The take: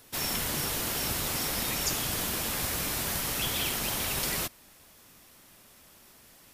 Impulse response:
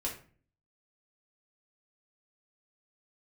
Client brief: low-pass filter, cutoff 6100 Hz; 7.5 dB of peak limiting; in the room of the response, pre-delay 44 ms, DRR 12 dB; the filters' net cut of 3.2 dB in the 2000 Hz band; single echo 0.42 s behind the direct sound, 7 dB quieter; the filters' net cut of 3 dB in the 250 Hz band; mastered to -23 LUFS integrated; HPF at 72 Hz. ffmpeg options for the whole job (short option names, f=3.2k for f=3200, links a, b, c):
-filter_complex "[0:a]highpass=72,lowpass=6.1k,equalizer=f=250:t=o:g=-4,equalizer=f=2k:t=o:g=-4,alimiter=level_in=4dB:limit=-24dB:level=0:latency=1,volume=-4dB,aecho=1:1:420:0.447,asplit=2[a][b];[1:a]atrim=start_sample=2205,adelay=44[c];[b][c]afir=irnorm=-1:irlink=0,volume=-14.5dB[d];[a][d]amix=inputs=2:normalize=0,volume=12.5dB"